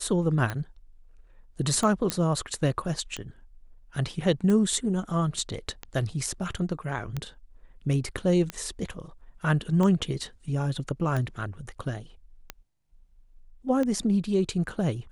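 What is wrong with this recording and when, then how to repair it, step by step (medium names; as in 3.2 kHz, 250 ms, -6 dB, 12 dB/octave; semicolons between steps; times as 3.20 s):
tick 45 rpm -17 dBFS
2.10 s: pop -9 dBFS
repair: de-click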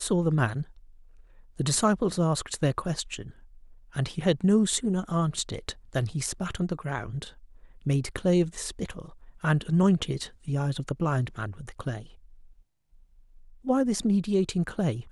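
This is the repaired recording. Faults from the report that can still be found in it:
nothing left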